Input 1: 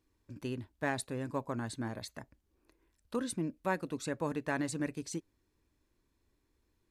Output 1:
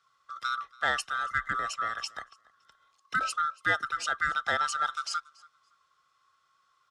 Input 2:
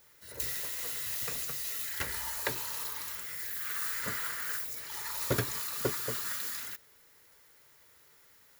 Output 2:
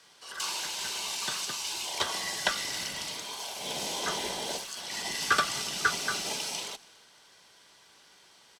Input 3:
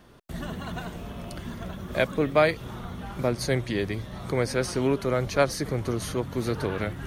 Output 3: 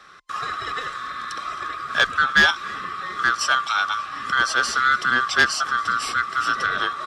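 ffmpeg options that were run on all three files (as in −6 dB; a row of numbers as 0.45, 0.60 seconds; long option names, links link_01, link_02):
-filter_complex "[0:a]afftfilt=real='real(if(lt(b,960),b+48*(1-2*mod(floor(b/48),2)),b),0)':imag='imag(if(lt(b,960),b+48*(1-2*mod(floor(b/48),2)),b),0)':win_size=2048:overlap=0.75,lowshelf=frequency=110:gain=-5,asplit=2[link_01][link_02];[link_02]asoftclip=type=tanh:threshold=-21dB,volume=-5dB[link_03];[link_01][link_03]amix=inputs=2:normalize=0,lowpass=6700,volume=11.5dB,asoftclip=hard,volume=-11.5dB,equalizer=frequency=4800:width_type=o:width=2.4:gain=7.5,asplit=2[link_04][link_05];[link_05]aecho=0:1:282|564:0.0631|0.0126[link_06];[link_04][link_06]amix=inputs=2:normalize=0,afreqshift=19"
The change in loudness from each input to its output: +7.5, +2.5, +7.0 LU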